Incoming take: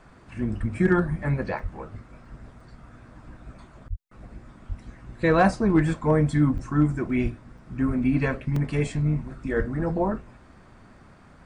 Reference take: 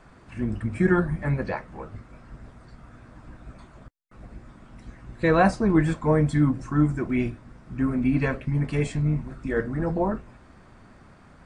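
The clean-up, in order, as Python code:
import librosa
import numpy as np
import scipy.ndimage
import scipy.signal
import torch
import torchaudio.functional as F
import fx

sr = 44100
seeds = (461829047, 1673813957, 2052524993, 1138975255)

y = fx.fix_declip(x, sr, threshold_db=-10.0)
y = fx.fix_deplosive(y, sr, at_s=(0.59, 1.62, 3.89, 4.68, 6.53, 7.22, 7.87, 9.58))
y = fx.fix_interpolate(y, sr, at_s=(1.59, 2.25, 2.6, 6.58, 7.58, 8.56), length_ms=3.3)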